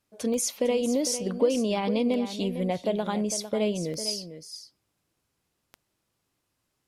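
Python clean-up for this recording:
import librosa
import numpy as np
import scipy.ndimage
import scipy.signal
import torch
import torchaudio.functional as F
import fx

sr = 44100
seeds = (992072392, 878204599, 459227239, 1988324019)

y = fx.fix_declick_ar(x, sr, threshold=10.0)
y = fx.fix_echo_inverse(y, sr, delay_ms=452, level_db=-11.0)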